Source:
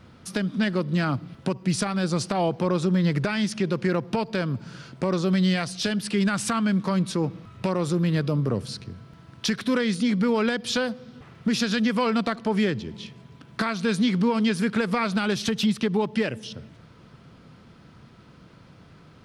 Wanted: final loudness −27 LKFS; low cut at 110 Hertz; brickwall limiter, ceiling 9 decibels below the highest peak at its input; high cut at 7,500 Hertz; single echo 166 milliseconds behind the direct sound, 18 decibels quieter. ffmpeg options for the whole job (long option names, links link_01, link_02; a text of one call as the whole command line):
ffmpeg -i in.wav -af "highpass=110,lowpass=7500,alimiter=limit=-19.5dB:level=0:latency=1,aecho=1:1:166:0.126,volume=2dB" out.wav